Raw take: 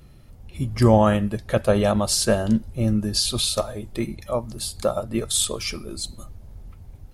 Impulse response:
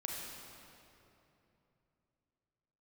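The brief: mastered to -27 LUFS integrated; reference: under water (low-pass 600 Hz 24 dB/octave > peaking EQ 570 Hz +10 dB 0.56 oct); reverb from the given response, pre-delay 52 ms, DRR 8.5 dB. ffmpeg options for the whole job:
-filter_complex "[0:a]asplit=2[s0][s1];[1:a]atrim=start_sample=2205,adelay=52[s2];[s1][s2]afir=irnorm=-1:irlink=0,volume=0.335[s3];[s0][s3]amix=inputs=2:normalize=0,lowpass=f=600:w=0.5412,lowpass=f=600:w=1.3066,equalizer=f=570:t=o:w=0.56:g=10,volume=0.422"

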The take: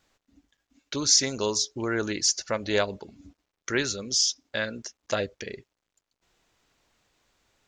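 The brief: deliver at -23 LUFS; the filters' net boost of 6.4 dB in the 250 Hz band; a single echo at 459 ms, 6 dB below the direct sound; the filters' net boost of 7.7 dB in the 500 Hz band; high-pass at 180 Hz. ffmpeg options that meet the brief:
-af "highpass=180,equalizer=f=250:t=o:g=6.5,equalizer=f=500:t=o:g=7.5,aecho=1:1:459:0.501"

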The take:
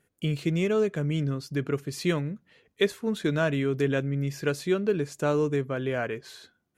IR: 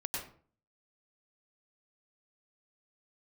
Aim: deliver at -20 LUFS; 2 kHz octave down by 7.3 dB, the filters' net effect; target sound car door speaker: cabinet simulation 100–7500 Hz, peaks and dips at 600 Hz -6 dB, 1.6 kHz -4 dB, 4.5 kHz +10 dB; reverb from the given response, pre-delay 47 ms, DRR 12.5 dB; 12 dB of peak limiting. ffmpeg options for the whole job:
-filter_complex "[0:a]equalizer=f=2000:t=o:g=-7.5,alimiter=level_in=1.12:limit=0.0631:level=0:latency=1,volume=0.891,asplit=2[s0][s1];[1:a]atrim=start_sample=2205,adelay=47[s2];[s1][s2]afir=irnorm=-1:irlink=0,volume=0.178[s3];[s0][s3]amix=inputs=2:normalize=0,highpass=100,equalizer=f=600:t=q:w=4:g=-6,equalizer=f=1600:t=q:w=4:g=-4,equalizer=f=4500:t=q:w=4:g=10,lowpass=f=7500:w=0.5412,lowpass=f=7500:w=1.3066,volume=5.31"

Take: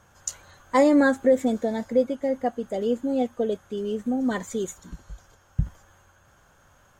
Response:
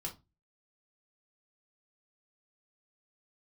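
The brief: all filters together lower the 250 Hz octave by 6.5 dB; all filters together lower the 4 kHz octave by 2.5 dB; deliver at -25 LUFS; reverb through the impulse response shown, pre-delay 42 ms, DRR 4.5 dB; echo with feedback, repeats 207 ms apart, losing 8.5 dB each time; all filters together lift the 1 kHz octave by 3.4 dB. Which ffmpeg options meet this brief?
-filter_complex "[0:a]equalizer=f=250:t=o:g=-7.5,equalizer=f=1000:t=o:g=5,equalizer=f=4000:t=o:g=-3.5,aecho=1:1:207|414|621|828:0.376|0.143|0.0543|0.0206,asplit=2[s0][s1];[1:a]atrim=start_sample=2205,adelay=42[s2];[s1][s2]afir=irnorm=-1:irlink=0,volume=0.668[s3];[s0][s3]amix=inputs=2:normalize=0,volume=0.944"

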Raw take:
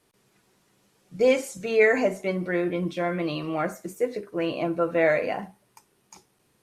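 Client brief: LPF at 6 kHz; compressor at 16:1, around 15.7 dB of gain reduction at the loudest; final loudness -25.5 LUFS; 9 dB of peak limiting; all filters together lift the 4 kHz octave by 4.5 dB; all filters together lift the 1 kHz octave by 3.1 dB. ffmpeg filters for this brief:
-af "lowpass=6000,equalizer=f=1000:t=o:g=4.5,equalizer=f=4000:t=o:g=6.5,acompressor=threshold=0.0316:ratio=16,volume=4.73,alimiter=limit=0.158:level=0:latency=1"

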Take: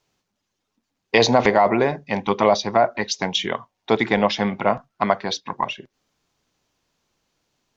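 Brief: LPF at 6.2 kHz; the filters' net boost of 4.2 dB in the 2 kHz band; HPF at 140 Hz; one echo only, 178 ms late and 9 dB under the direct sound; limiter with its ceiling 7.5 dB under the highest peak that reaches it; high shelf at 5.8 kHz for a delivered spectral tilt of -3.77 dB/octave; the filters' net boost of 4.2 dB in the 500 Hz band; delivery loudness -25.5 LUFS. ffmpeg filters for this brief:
-af "highpass=140,lowpass=6200,equalizer=f=500:t=o:g=5,equalizer=f=2000:t=o:g=4,highshelf=f=5800:g=5.5,alimiter=limit=0.562:level=0:latency=1,aecho=1:1:178:0.355,volume=0.501"

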